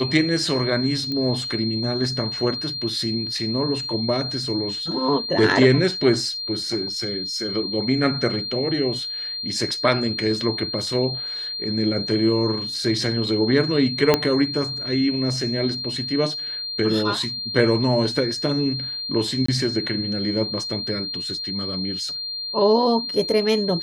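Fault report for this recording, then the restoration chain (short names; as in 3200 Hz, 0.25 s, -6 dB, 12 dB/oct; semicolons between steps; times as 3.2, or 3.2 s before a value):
tone 4200 Hz -27 dBFS
1.12 pop -16 dBFS
14.14 pop -2 dBFS
19.46–19.48 gap 24 ms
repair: de-click; notch 4200 Hz, Q 30; interpolate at 19.46, 24 ms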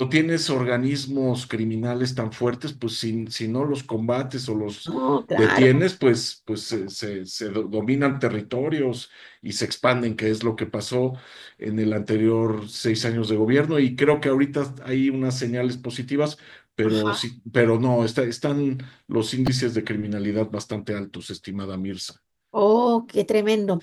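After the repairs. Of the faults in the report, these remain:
14.14 pop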